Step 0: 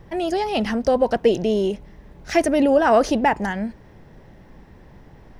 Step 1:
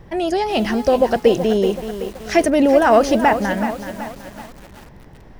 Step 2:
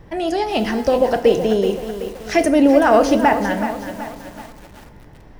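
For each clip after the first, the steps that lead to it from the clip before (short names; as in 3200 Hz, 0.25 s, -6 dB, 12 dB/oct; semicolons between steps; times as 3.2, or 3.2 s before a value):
lo-fi delay 0.378 s, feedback 55%, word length 6-bit, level -10 dB; gain +3 dB
FDN reverb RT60 0.83 s, low-frequency decay 0.8×, high-frequency decay 0.7×, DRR 8.5 dB; gain -1 dB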